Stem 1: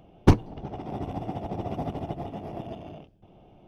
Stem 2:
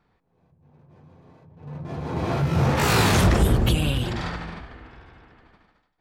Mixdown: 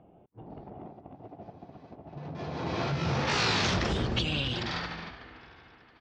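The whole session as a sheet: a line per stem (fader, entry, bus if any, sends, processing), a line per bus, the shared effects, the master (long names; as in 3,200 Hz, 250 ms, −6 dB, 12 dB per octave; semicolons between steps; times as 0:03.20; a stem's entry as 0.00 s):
−9.0 dB, 0.00 s, no send, low-pass filter 1,600 Hz 12 dB per octave; compressor whose output falls as the input rises −38 dBFS, ratio −0.5
−5.0 dB, 0.50 s, no send, Butterworth low-pass 5,700 Hz 36 dB per octave; high-shelf EQ 2,400 Hz +10.5 dB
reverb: not used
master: high-pass filter 120 Hz 6 dB per octave; downward compressor 2 to 1, threshold −27 dBFS, peak gain reduction 5 dB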